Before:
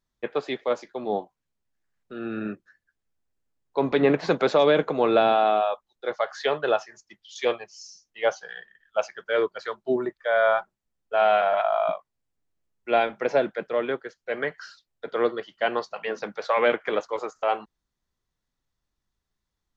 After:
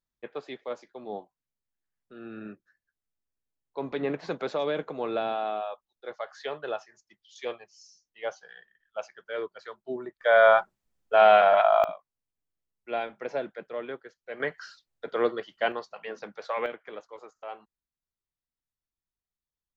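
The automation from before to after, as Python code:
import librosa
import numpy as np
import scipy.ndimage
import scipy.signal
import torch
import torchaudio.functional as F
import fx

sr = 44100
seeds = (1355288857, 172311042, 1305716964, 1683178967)

y = fx.gain(x, sr, db=fx.steps((0.0, -10.0), (10.21, 3.0), (11.84, -9.5), (14.4, -2.0), (15.72, -8.0), (16.66, -15.5)))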